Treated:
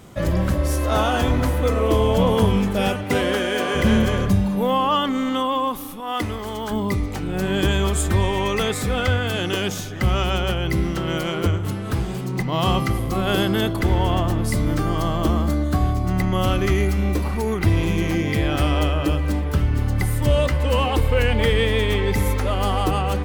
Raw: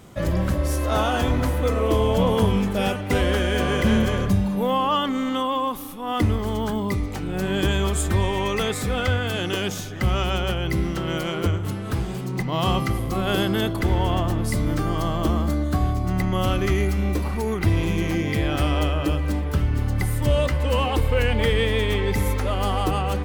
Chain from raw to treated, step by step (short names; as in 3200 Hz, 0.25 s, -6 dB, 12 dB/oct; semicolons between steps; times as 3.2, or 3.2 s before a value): 3.03–3.74 HPF 100 Hz -> 350 Hz 12 dB/oct; 6–6.71 low shelf 330 Hz -11.5 dB; gain +2 dB